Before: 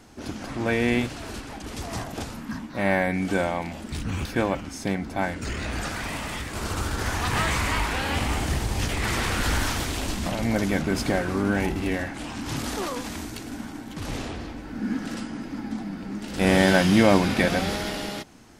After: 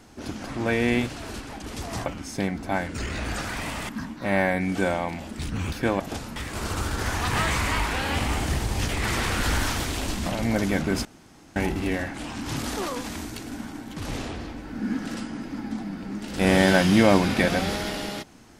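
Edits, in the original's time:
2.06–2.42 s: swap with 4.53–6.36 s
11.05–11.56 s: room tone

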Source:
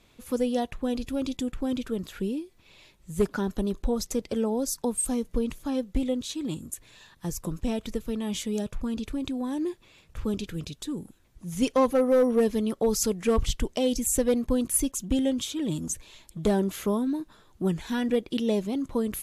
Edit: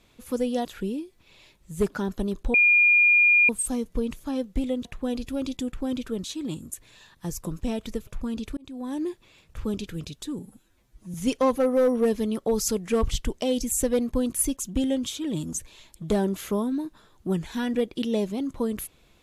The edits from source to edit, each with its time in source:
0.65–2.04 s: move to 6.24 s
3.93–4.88 s: bleep 2.42 kHz -14.5 dBFS
8.07–8.67 s: delete
9.17–9.54 s: fade in
10.99–11.49 s: stretch 1.5×

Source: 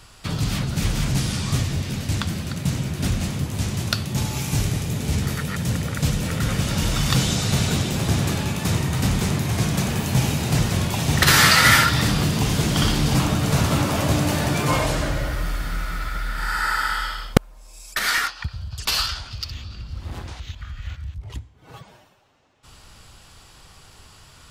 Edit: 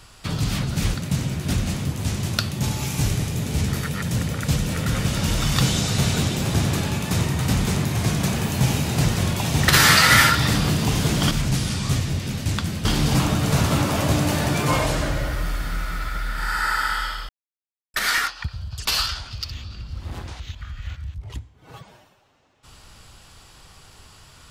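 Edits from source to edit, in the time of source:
0.94–2.48 s: move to 12.85 s
17.29–17.94 s: mute

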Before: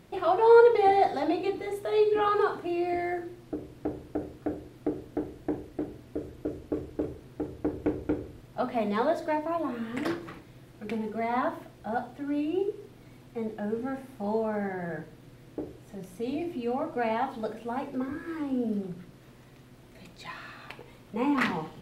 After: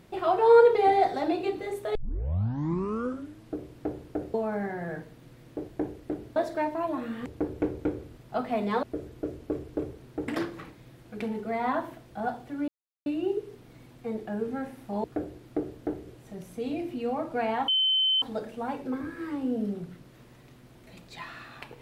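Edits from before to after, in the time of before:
1.95 s: tape start 1.59 s
4.34–5.37 s: swap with 14.35–15.69 s
6.05–7.50 s: swap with 9.07–9.97 s
12.37 s: insert silence 0.38 s
17.30 s: add tone 3.07 kHz -21 dBFS 0.54 s

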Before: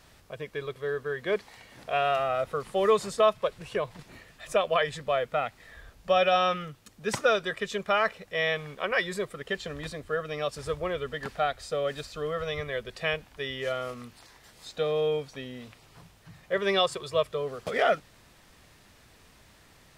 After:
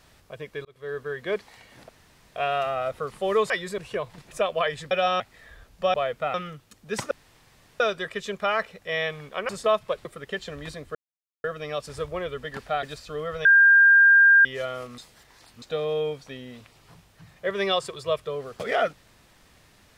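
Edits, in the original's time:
0.65–0.98 s: fade in
1.89 s: insert room tone 0.47 s
3.03–3.59 s: swap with 8.95–9.23 s
4.12–4.46 s: delete
5.06–5.46 s: swap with 6.20–6.49 s
7.26 s: insert room tone 0.69 s
10.13 s: insert silence 0.49 s
11.52–11.90 s: delete
12.52–13.52 s: bleep 1.6 kHz -11.5 dBFS
14.05–14.69 s: reverse

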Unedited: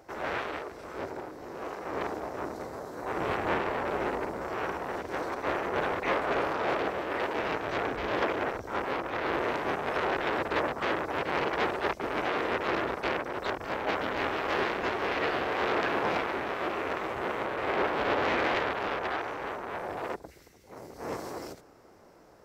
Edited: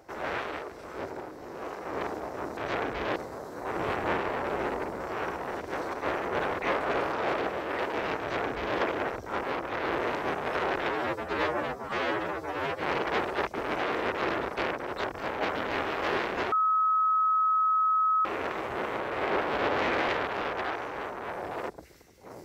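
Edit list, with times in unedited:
7.60–8.19 s: copy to 2.57 s
10.31–11.26 s: stretch 2×
14.98–16.71 s: bleep 1.28 kHz -21.5 dBFS

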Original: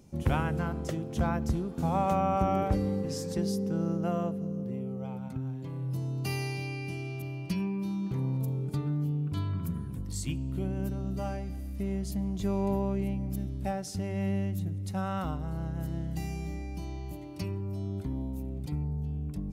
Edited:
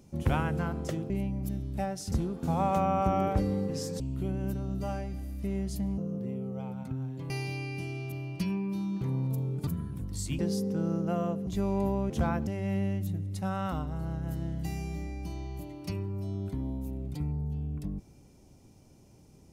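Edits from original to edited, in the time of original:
1.10–1.47 s: swap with 12.97–13.99 s
3.35–4.43 s: swap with 10.36–12.34 s
5.75–6.40 s: delete
8.77–9.64 s: delete

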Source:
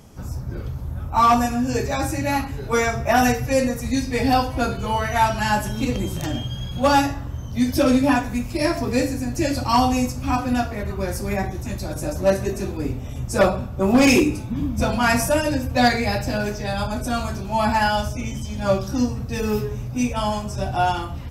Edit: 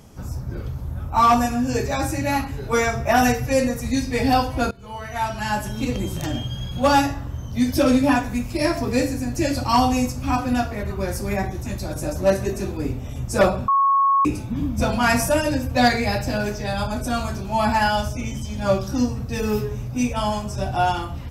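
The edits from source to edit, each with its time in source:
4.71–6.54 s: fade in equal-power, from -21 dB
13.68–14.25 s: bleep 1.1 kHz -14 dBFS

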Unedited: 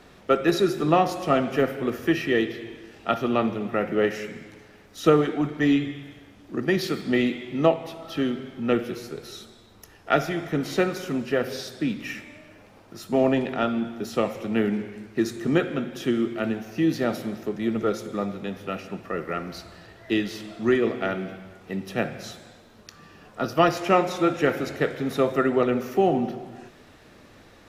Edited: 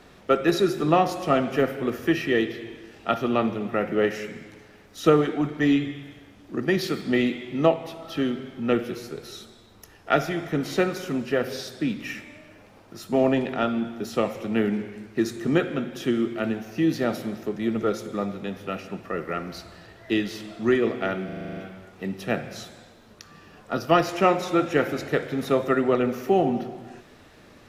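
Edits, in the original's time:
21.25 s: stutter 0.04 s, 9 plays

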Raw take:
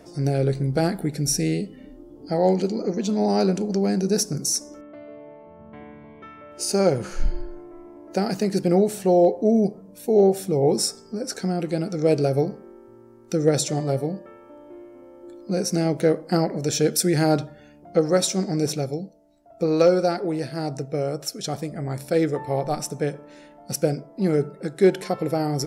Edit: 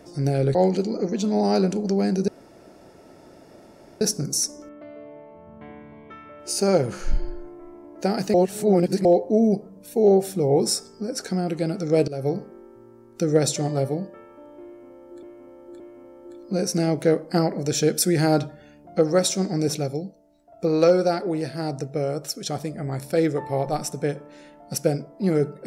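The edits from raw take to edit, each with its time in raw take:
0.55–2.40 s: delete
4.13 s: insert room tone 1.73 s
8.46–9.17 s: reverse
12.20–12.49 s: fade in, from -18.5 dB
14.78–15.35 s: loop, 3 plays

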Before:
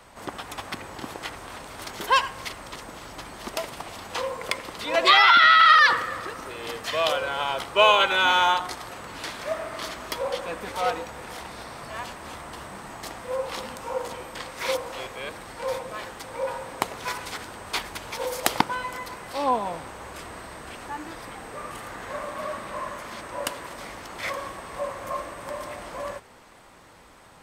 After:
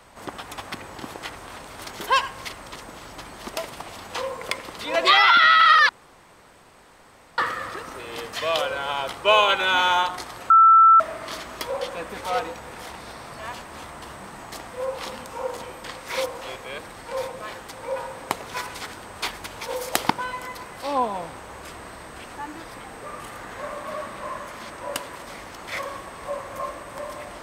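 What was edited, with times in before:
5.89 s: insert room tone 1.49 s
9.01–9.51 s: bleep 1.33 kHz -9 dBFS

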